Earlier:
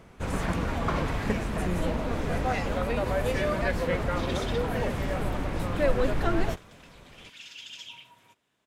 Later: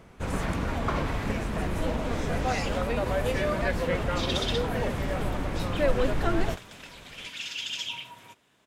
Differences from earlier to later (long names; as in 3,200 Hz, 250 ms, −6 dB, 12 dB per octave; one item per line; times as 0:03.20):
speech −6.0 dB
second sound +9.5 dB